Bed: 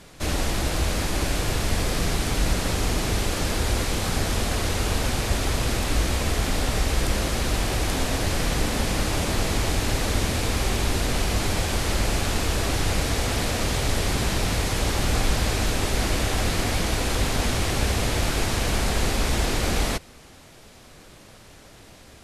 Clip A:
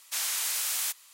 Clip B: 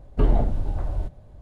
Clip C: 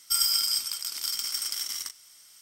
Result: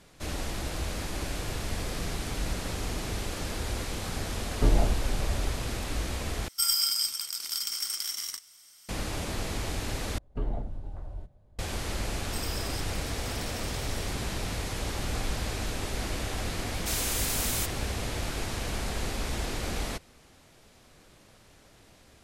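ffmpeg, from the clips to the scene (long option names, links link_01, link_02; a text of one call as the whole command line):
ffmpeg -i bed.wav -i cue0.wav -i cue1.wav -i cue2.wav -filter_complex "[2:a]asplit=2[link_01][link_02];[3:a]asplit=2[link_03][link_04];[0:a]volume=-9dB[link_05];[link_01]asplit=2[link_06][link_07];[link_07]adelay=18,volume=-5dB[link_08];[link_06][link_08]amix=inputs=2:normalize=0[link_09];[link_05]asplit=3[link_10][link_11][link_12];[link_10]atrim=end=6.484[link_13];[link_03]atrim=end=2.41,asetpts=PTS-STARTPTS,volume=-1.5dB[link_14];[link_11]atrim=start=8.886:end=10.184[link_15];[link_02]atrim=end=1.41,asetpts=PTS-STARTPTS,volume=-12.5dB[link_16];[link_12]atrim=start=11.586[link_17];[link_09]atrim=end=1.41,asetpts=PTS-STARTPTS,volume=-4dB,afade=type=in:duration=0.004:curve=hsin,afade=type=out:start_time=1.406:duration=0.004:curve=hsin,adelay=4430[link_18];[link_04]atrim=end=2.41,asetpts=PTS-STARTPTS,volume=-16.5dB,afade=type=in:duration=0.004:curve=hsin,afade=type=out:start_time=2.406:duration=0.004:curve=hsin,adelay=12220[link_19];[1:a]atrim=end=1.13,asetpts=PTS-STARTPTS,volume=-1.5dB,afade=type=in:duration=0.004:curve=hsin,afade=type=out:start_time=1.126:duration=0.004:curve=hsin,adelay=16740[link_20];[link_13][link_14]acrossfade=duration=0.004:curve1=hsin:curve2=hsin[link_21];[link_21][link_15]acrossfade=duration=0.004:curve1=hsin:curve2=hsin[link_22];[link_22][link_16]acrossfade=duration=0.004:curve1=hsin:curve2=hsin[link_23];[link_23][link_17]acrossfade=duration=0.004:curve1=hsin:curve2=hsin[link_24];[link_24][link_18][link_19][link_20]amix=inputs=4:normalize=0" out.wav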